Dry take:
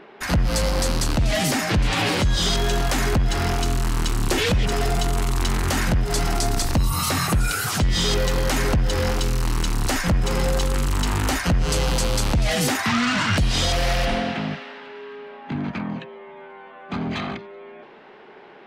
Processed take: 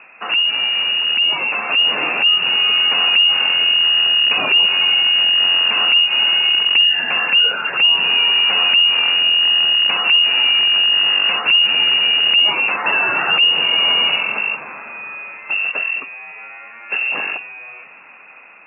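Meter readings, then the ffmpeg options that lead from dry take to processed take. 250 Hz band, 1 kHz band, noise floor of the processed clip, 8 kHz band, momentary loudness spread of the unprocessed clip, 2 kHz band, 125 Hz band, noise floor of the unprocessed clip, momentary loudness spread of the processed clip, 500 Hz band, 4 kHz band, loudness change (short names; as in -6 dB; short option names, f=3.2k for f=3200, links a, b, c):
-13.5 dB, +1.5 dB, -41 dBFS, under -40 dB, 12 LU, +12.0 dB, under -25 dB, -45 dBFS, 10 LU, -6.0 dB, +18.0 dB, +10.0 dB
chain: -filter_complex "[0:a]dynaudnorm=f=770:g=5:m=4.5dB,equalizer=f=740:t=o:w=1.7:g=-9.5,lowpass=f=2.5k:t=q:w=0.5098,lowpass=f=2.5k:t=q:w=0.6013,lowpass=f=2.5k:t=q:w=0.9,lowpass=f=2.5k:t=q:w=2.563,afreqshift=-2900,asplit=2[a][b];[b]acompressor=threshold=-28dB:ratio=6,volume=2dB[c];[a][c]amix=inputs=2:normalize=0,highpass=f=150:w=0.5412,highpass=f=150:w=1.3066"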